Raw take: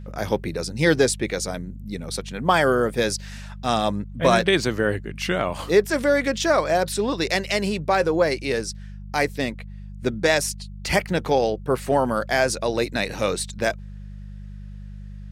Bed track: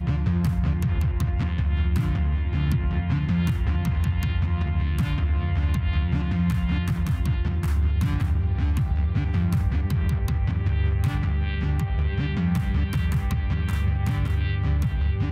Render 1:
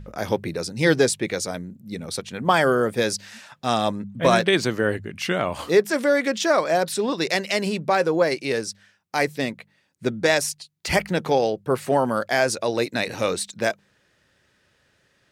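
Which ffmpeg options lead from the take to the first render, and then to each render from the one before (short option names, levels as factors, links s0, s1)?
-af "bandreject=f=50:t=h:w=4,bandreject=f=100:t=h:w=4,bandreject=f=150:t=h:w=4,bandreject=f=200:t=h:w=4"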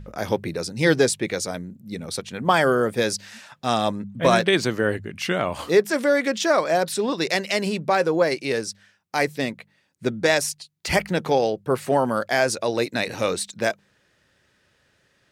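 -af anull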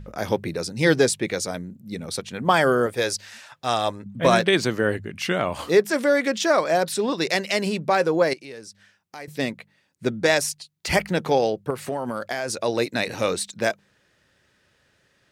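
-filter_complex "[0:a]asettb=1/sr,asplit=3[s0][s1][s2];[s0]atrim=end=2.864[s3];[s1]atrim=start=2.86:end=4.06,asetpts=PTS-STARTPTS,afade=t=in:d=0.004:c=qsin,afade=t=out:st=1.196:d=0.004:c=qsin,equalizer=f=200:t=o:w=0.98:g=-11[s4];[s2]atrim=start=4.056[s5];[s3][s4]acrossfade=d=0.004:c1=hsin:c2=qsin[s6];[s6][s5]acrossfade=d=0.004:c1=qsin:c2=hsin,asettb=1/sr,asplit=3[s7][s8][s9];[s7]atrim=end=8.334[s10];[s8]atrim=start=8.33:end=9.28,asetpts=PTS-STARTPTS,afade=t=in:d=0.004:c=qsin,afade=t=out:st=0.946:d=0.004:c=qsin,acompressor=threshold=0.00447:ratio=2:attack=3.2:release=140:knee=1:detection=peak[s11];[s9]atrim=start=9.276[s12];[s10][s11]acrossfade=d=0.004:c1=hsin:c2=qsin[s13];[s13][s12]acrossfade=d=0.004:c1=qsin:c2=hsin,asettb=1/sr,asplit=3[s14][s15][s16];[s14]atrim=end=11.704[s17];[s15]atrim=start=11.7:end=12.56,asetpts=PTS-STARTPTS,afade=t=in:d=0.004:c=qsin,afade=t=out:st=0.856:d=0.004:c=qsin,acompressor=threshold=0.0708:ratio=6:attack=3.2:release=140:knee=1:detection=peak[s18];[s16]atrim=start=12.556[s19];[s17][s18]acrossfade=d=0.004:c1=hsin:c2=qsin[s20];[s20][s19]acrossfade=d=0.004:c1=qsin:c2=hsin"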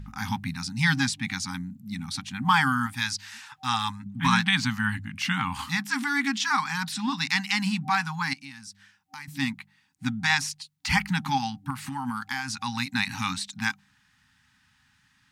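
-filter_complex "[0:a]afftfilt=real='re*(1-between(b*sr/4096,280,770))':imag='im*(1-between(b*sr/4096,280,770))':win_size=4096:overlap=0.75,acrossover=split=6500[s0][s1];[s1]acompressor=threshold=0.00794:ratio=4:attack=1:release=60[s2];[s0][s2]amix=inputs=2:normalize=0"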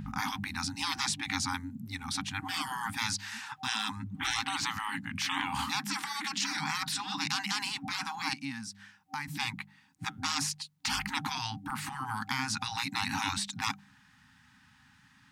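-af "afftfilt=real='re*lt(hypot(re,im),0.0891)':imag='im*lt(hypot(re,im),0.0891)':win_size=1024:overlap=0.75,equalizer=f=400:w=0.35:g=9"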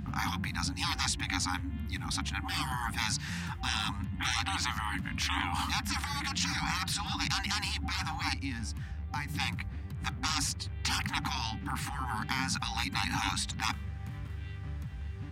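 -filter_complex "[1:a]volume=0.15[s0];[0:a][s0]amix=inputs=2:normalize=0"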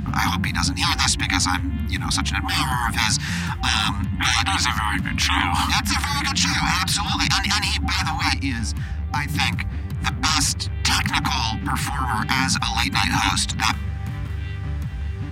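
-af "volume=3.98"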